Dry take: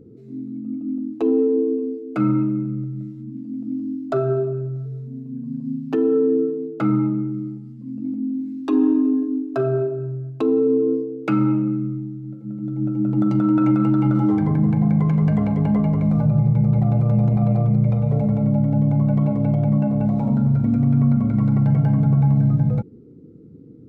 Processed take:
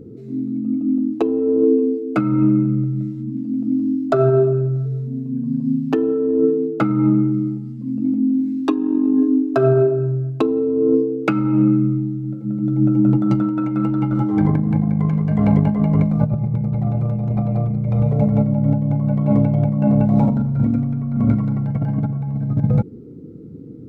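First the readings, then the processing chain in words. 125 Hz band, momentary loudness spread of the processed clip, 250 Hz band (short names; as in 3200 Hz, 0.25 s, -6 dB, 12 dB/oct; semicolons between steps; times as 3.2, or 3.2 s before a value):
+0.5 dB, 8 LU, +2.0 dB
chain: negative-ratio compressor -20 dBFS, ratio -0.5; gain +4.5 dB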